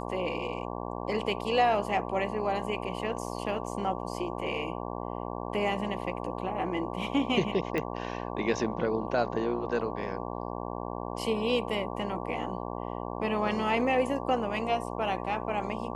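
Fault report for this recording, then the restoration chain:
mains buzz 60 Hz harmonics 19 −36 dBFS
0:07.78: click −18 dBFS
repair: click removal
hum removal 60 Hz, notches 19

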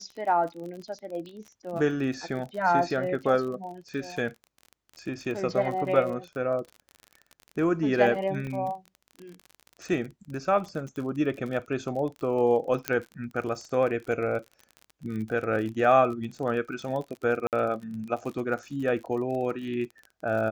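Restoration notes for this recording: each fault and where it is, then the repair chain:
surface crackle 35 per second −35 dBFS
0:08.47: drop-out 2.2 ms
0:12.88: click −9 dBFS
0:17.47–0:17.53: drop-out 58 ms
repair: click removal
repair the gap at 0:08.47, 2.2 ms
repair the gap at 0:17.47, 58 ms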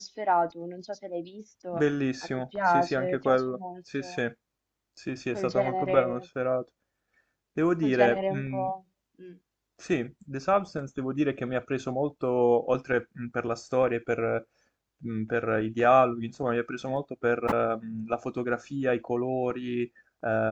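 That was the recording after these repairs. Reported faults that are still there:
none of them is left

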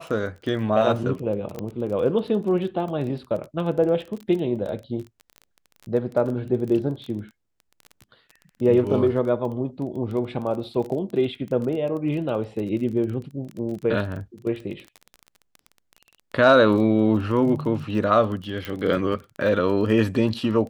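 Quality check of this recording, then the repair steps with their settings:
surface crackle 23 per second −31 dBFS
0:01.59: click −18 dBFS
0:18.65: click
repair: click removal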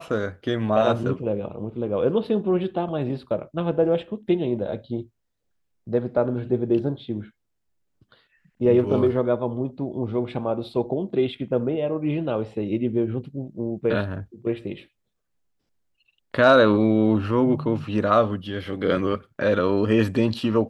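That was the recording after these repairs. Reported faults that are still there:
none of them is left

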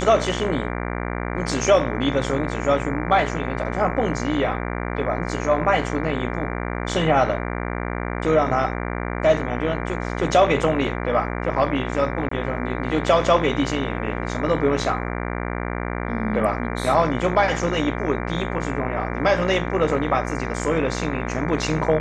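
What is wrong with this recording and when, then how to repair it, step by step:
mains buzz 60 Hz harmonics 39 −27 dBFS
0:12.29–0:12.31: drop-out 24 ms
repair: hum removal 60 Hz, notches 39
repair the gap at 0:12.29, 24 ms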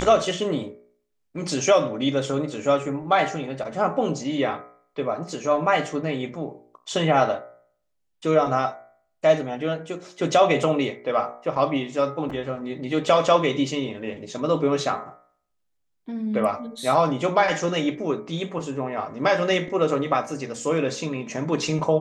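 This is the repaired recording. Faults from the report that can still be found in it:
none of them is left

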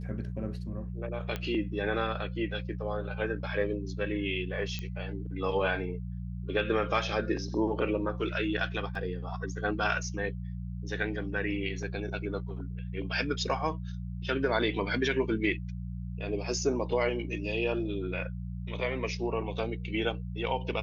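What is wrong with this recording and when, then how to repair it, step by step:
mains hum 60 Hz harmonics 3 −37 dBFS
0:01.36: click −20 dBFS
0:04.79: click −22 dBFS
0:08.95: drop-out 3 ms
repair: click removal
hum removal 60 Hz, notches 3
repair the gap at 0:08.95, 3 ms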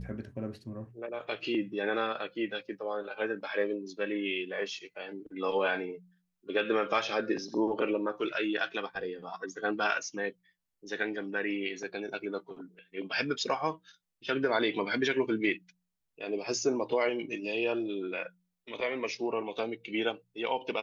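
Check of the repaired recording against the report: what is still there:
none of them is left

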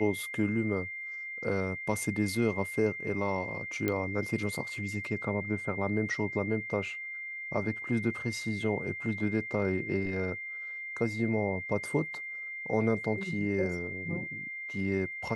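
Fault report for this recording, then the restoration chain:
whistle 2,100 Hz −37 dBFS
0:03.88: click −16 dBFS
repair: click removal
notch filter 2,100 Hz, Q 30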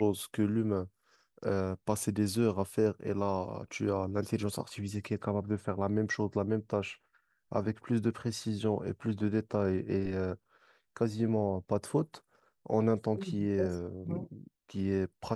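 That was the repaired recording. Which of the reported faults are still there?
none of them is left

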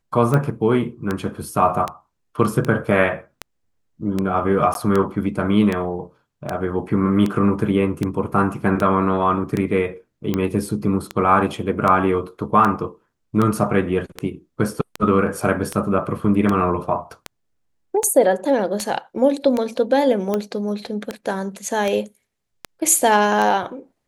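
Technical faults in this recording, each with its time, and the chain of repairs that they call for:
scratch tick 78 rpm −9 dBFS
0:04.74–0:04.75: drop-out 12 ms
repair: click removal
repair the gap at 0:04.74, 12 ms

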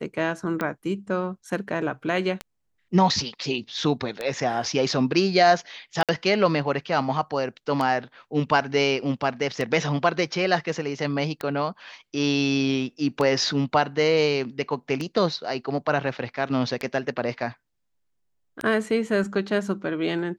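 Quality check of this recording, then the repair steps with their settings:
scratch tick 33 1/3 rpm −14 dBFS
0:06.03–0:06.09: drop-out 57 ms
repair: click removal
repair the gap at 0:06.03, 57 ms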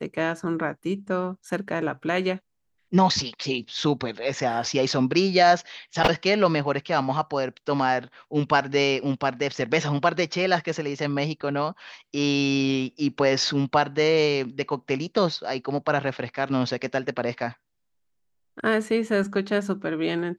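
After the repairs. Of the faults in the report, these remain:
none of them is left

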